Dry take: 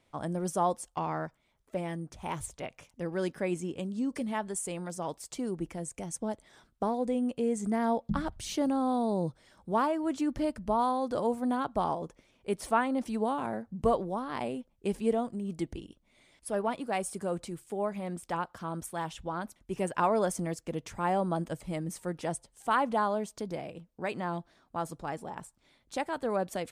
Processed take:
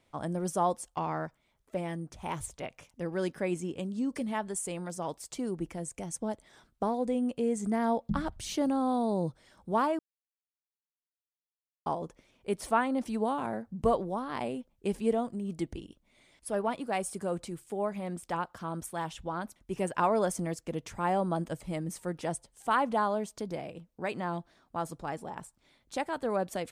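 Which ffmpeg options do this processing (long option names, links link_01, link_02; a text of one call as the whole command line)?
ffmpeg -i in.wav -filter_complex "[0:a]asplit=3[link_01][link_02][link_03];[link_01]atrim=end=9.99,asetpts=PTS-STARTPTS,afade=type=out:start_time=9.986:duration=0.004:curve=hsin[link_04];[link_02]atrim=start=9.99:end=11.86,asetpts=PTS-STARTPTS,volume=0[link_05];[link_03]atrim=start=11.86,asetpts=PTS-STARTPTS,afade=type=in:duration=0.004:curve=hsin[link_06];[link_04][link_05][link_06]concat=n=3:v=0:a=1" out.wav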